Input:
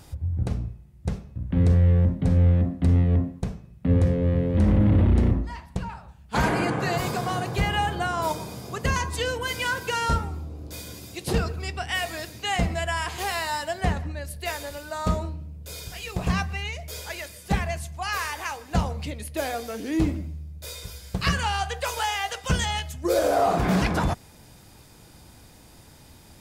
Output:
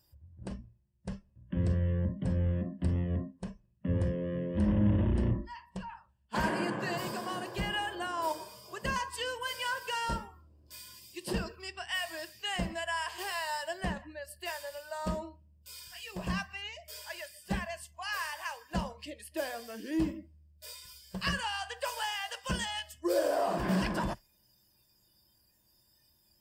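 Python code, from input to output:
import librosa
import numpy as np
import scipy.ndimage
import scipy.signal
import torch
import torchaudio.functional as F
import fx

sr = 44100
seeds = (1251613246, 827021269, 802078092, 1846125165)

y = fx.noise_reduce_blind(x, sr, reduce_db=17)
y = fx.ripple_eq(y, sr, per_octave=1.3, db=8)
y = F.gain(torch.from_numpy(y), -8.5).numpy()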